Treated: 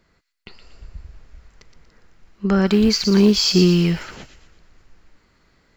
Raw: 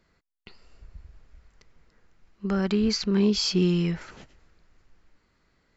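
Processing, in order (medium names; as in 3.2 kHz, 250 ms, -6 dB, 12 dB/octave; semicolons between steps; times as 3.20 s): 2.67–3.91 s: companding laws mixed up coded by A; level rider gain up to 3.5 dB; on a send: feedback echo behind a high-pass 118 ms, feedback 41%, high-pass 2.7 kHz, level -6.5 dB; on the sum: trim +5 dB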